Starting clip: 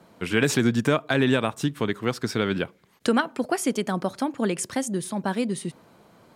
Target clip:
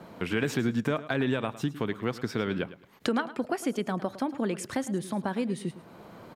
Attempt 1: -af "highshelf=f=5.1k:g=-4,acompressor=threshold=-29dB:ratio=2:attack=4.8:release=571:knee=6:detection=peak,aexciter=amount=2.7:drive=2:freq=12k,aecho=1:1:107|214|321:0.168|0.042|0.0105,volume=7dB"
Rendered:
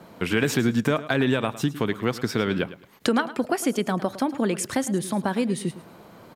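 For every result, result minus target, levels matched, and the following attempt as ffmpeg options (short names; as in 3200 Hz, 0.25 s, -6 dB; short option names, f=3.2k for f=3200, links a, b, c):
compressor: peak gain reduction -5.5 dB; 8000 Hz band +4.0 dB
-af "highshelf=f=5.1k:g=-4,acompressor=threshold=-40dB:ratio=2:attack=4.8:release=571:knee=6:detection=peak,aexciter=amount=2.7:drive=2:freq=12k,aecho=1:1:107|214|321:0.168|0.042|0.0105,volume=7dB"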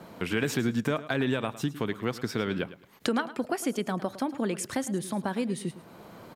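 8000 Hz band +4.0 dB
-af "highshelf=f=5.1k:g=-10.5,acompressor=threshold=-40dB:ratio=2:attack=4.8:release=571:knee=6:detection=peak,aexciter=amount=2.7:drive=2:freq=12k,aecho=1:1:107|214|321:0.168|0.042|0.0105,volume=7dB"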